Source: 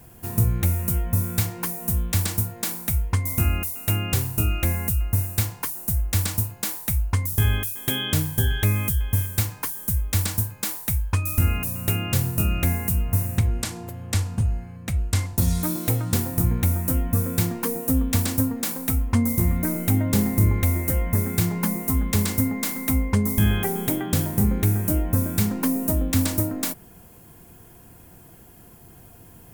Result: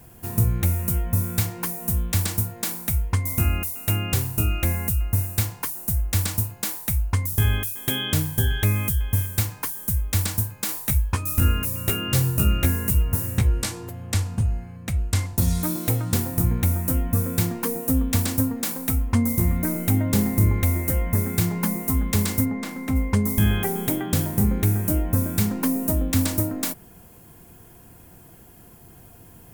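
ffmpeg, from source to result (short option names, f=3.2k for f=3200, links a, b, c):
-filter_complex "[0:a]asettb=1/sr,asplit=3[a][b][c];[a]atrim=end=10.674[d];[b]atrim=start=10.67:end=13.9,asetpts=PTS-STARTPTS,afade=t=in:d=0.004:c=qsin,afade=t=out:st=3.226:d=0.004:c=qsin,asplit=2[e][f];[f]adelay=15,volume=-3dB[g];[e][g]amix=inputs=2:normalize=0,atrim=end_sample=142443[h];[c]atrim=start=13.896[i];[d][h]acrossfade=d=0.004:c1=hsin:c2=qsin[j];[j][i]acrossfade=d=0.004:c1=qsin:c2=hsin,asplit=3[k][l][m];[k]afade=t=out:st=22.44:d=0.02[n];[l]aemphasis=mode=reproduction:type=75kf,afade=t=in:st=22.44:d=0.02,afade=t=out:st=22.95:d=0.02[o];[m]afade=t=in:st=22.95:d=0.02[p];[n][o][p]amix=inputs=3:normalize=0"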